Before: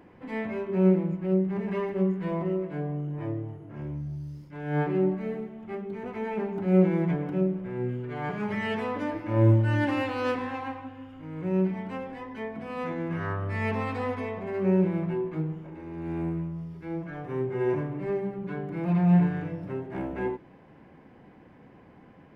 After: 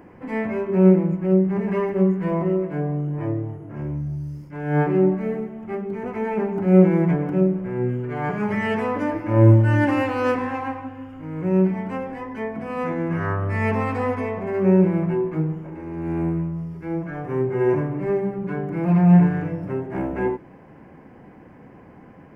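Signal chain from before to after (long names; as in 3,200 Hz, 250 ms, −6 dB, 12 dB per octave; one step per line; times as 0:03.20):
parametric band 3,700 Hz −12 dB 0.62 octaves
level +7 dB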